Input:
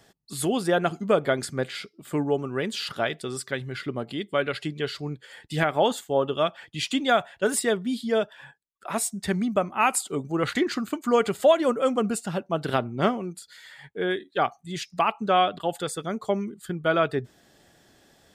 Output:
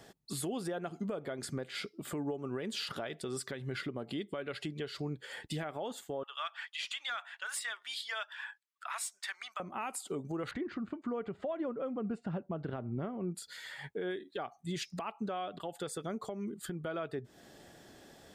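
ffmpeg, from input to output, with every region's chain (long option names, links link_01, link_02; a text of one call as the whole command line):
ffmpeg -i in.wav -filter_complex "[0:a]asettb=1/sr,asplit=3[link_01][link_02][link_03];[link_01]atrim=end=6.234[link_04];[link_02]atrim=start=6.23:end=9.6,asetpts=PTS-STARTPTS,afade=type=in:duration=0.004:curve=qsin,afade=type=out:start_time=3.366:duration=0.004:curve=qsin,highpass=frequency=1100:width=0.5412,highpass=frequency=1100:width=1.3066,asplit=2[link_05][link_06];[link_06]highpass=frequency=720:poles=1,volume=8dB,asoftclip=type=tanh:threshold=-12.5dB[link_07];[link_05][link_07]amix=inputs=2:normalize=0,lowpass=frequency=3400:poles=1,volume=-6dB[link_08];[link_03]atrim=start=9.596[link_09];[link_04][link_08]acrossfade=duration=0.004:curve1=hsin:curve2=qsin[link_10];[link_10][link_09]acrossfade=duration=0.004:curve1=qsin:curve2=hsin,asettb=1/sr,asplit=3[link_11][link_12][link_13];[link_11]atrim=end=10.514[link_14];[link_12]atrim=start=10.51:end=13.35,asetpts=PTS-STARTPTS,afade=type=in:duration=0.004:curve=qsin,afade=type=out:start_time=2.836:duration=0.004:curve=qsin,lowpass=2200,lowshelf=frequency=170:gain=11[link_15];[link_13]atrim=start=13.346[link_16];[link_14][link_15]acrossfade=duration=0.004:curve1=hsin:curve2=qsin[link_17];[link_17][link_16]acrossfade=duration=0.004:curve1=qsin:curve2=hsin,equalizer=frequency=400:width=0.47:gain=4,acompressor=threshold=-31dB:ratio=6,alimiter=level_in=4.5dB:limit=-24dB:level=0:latency=1:release=158,volume=-4.5dB" out.wav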